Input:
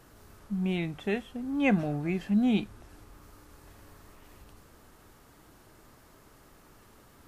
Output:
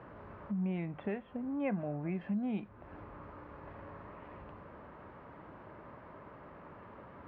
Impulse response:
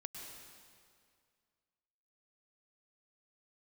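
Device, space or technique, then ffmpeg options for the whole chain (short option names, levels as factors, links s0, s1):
bass amplifier: -filter_complex "[0:a]acompressor=threshold=0.00631:ratio=3,highpass=70,equalizer=f=180:t=q:w=4:g=4,equalizer=f=570:t=q:w=4:g=8,equalizer=f=1000:t=q:w=4:g=7,lowpass=f=2300:w=0.5412,lowpass=f=2300:w=1.3066,asettb=1/sr,asplit=3[s0][s1][s2];[s0]atrim=end=2.124[s3];[s1]atrim=start=2.12:end=2.69,asetpts=PTS-STARTPTS,afade=t=in:d=0.004:c=qsin,afade=t=out:st=0.566:d=0.004:c=qsin,highshelf=f=5300:g=11[s4];[s2]atrim=start=2.686[s5];[s3][s4]acrossfade=d=0.004:c1=hsin:c2=qsin[s6];[s6][s5]acrossfade=d=0.004:c1=qsin:c2=hsin,volume=1.58"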